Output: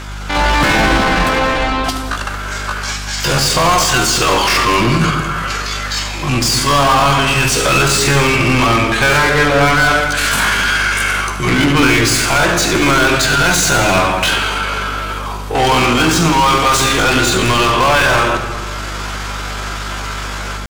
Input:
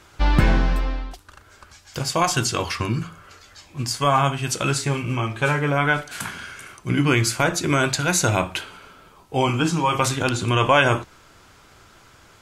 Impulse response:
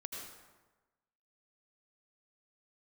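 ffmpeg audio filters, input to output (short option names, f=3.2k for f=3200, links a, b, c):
-filter_complex "[0:a]dynaudnorm=f=140:g=3:m=8dB,asplit=2[a][b];[b]highpass=f=720:p=1,volume=32dB,asoftclip=type=tanh:threshold=-1dB[c];[a][c]amix=inputs=2:normalize=0,lowpass=f=6.1k:p=1,volume=-6dB,atempo=0.6,aeval=exprs='val(0)+0.0708*(sin(2*PI*50*n/s)+sin(2*PI*2*50*n/s)/2+sin(2*PI*3*50*n/s)/3+sin(2*PI*4*50*n/s)/4+sin(2*PI*5*50*n/s)/5)':c=same,asplit=2[d][e];[1:a]atrim=start_sample=2205,lowshelf=f=440:g=7.5,adelay=78[f];[e][f]afir=irnorm=-1:irlink=0,volume=-7dB[g];[d][g]amix=inputs=2:normalize=0,volume=-5dB"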